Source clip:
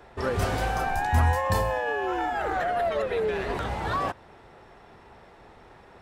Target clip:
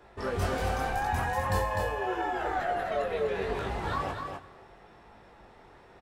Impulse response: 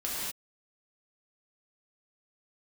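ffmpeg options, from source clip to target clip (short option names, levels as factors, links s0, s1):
-filter_complex "[0:a]flanger=delay=18.5:depth=4.4:speed=0.8,aecho=1:1:252:0.531,asplit=2[s0][s1];[1:a]atrim=start_sample=2205,asetrate=30429,aresample=44100[s2];[s1][s2]afir=irnorm=-1:irlink=0,volume=0.0631[s3];[s0][s3]amix=inputs=2:normalize=0,volume=0.794"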